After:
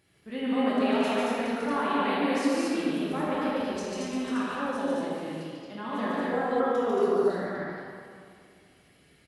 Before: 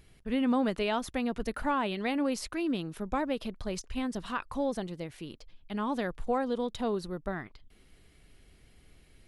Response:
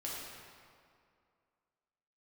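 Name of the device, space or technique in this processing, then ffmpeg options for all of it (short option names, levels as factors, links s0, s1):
stadium PA: -filter_complex "[0:a]highpass=140,equalizer=f=1700:t=o:w=0.36:g=4,aecho=1:1:145.8|227.4:0.794|0.891[s0];[1:a]atrim=start_sample=2205[s1];[s0][s1]afir=irnorm=-1:irlink=0,asettb=1/sr,asplit=3[s2][s3][s4];[s2]atrim=end=6.604[s5];[s3]atrim=start=6.6:end=7.3,asetpts=PTS-STARTPTS,afade=t=in:d=0.004:c=qsin,afade=t=out:st=0.696:d=0.004:c=qsin,equalizer=f=400:t=o:w=0.33:g=8,equalizer=f=1250:t=o:w=0.33:g=7,equalizer=f=4000:t=o:w=0.33:g=-12,equalizer=f=8000:t=o:w=0.33:g=-6[s6];[s4]atrim=start=7.296[s7];[s5][s6]acrossfade=d=0.004:c1=hsin:c2=qsin[s8];[s8][s7]acrossfade=d=0.004:c1=qsin:c2=hsin,volume=0.841"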